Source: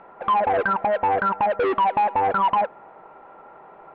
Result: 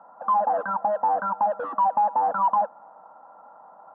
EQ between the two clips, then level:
high-pass filter 210 Hz 24 dB per octave
low-pass filter 1,300 Hz 12 dB per octave
phaser with its sweep stopped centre 930 Hz, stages 4
0.0 dB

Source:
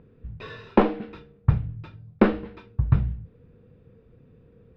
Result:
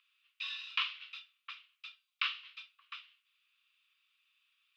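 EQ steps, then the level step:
Butterworth high-pass 1,100 Hz 96 dB per octave
high shelf with overshoot 2,200 Hz +9.5 dB, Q 3
−5.5 dB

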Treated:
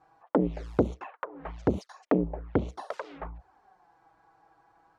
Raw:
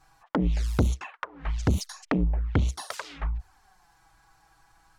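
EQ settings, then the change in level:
resonant band-pass 480 Hz, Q 1.3
+7.0 dB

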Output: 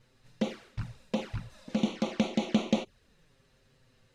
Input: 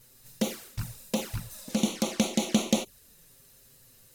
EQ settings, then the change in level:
low-pass filter 3,100 Hz 12 dB per octave
−1.5 dB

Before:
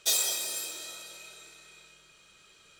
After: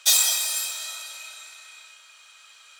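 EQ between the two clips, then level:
high-pass filter 770 Hz 24 dB per octave
+8.0 dB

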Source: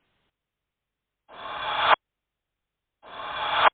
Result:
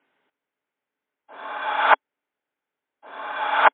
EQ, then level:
loudspeaker in its box 260–3,400 Hz, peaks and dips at 270 Hz +10 dB, 420 Hz +6 dB, 590 Hz +5 dB, 870 Hz +8 dB, 1,500 Hz +8 dB, 2,100 Hz +5 dB
−3.0 dB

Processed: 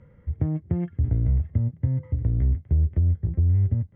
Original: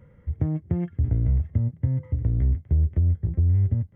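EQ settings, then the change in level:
high-frequency loss of the air 92 metres
0.0 dB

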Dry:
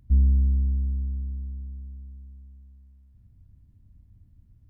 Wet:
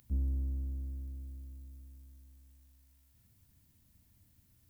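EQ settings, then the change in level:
spectral tilt +4.5 dB per octave
mains-hum notches 50/100/150/200/250/300/350/400 Hz
+4.0 dB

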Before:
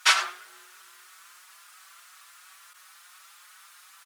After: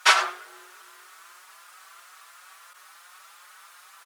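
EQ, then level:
high-pass filter 430 Hz 12 dB per octave
tilt shelving filter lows +8.5 dB, about 830 Hz
+8.0 dB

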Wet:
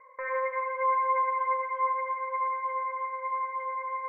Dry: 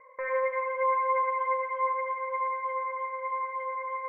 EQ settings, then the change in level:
parametric band 1,300 Hz +7 dB 1.5 octaves
−5.0 dB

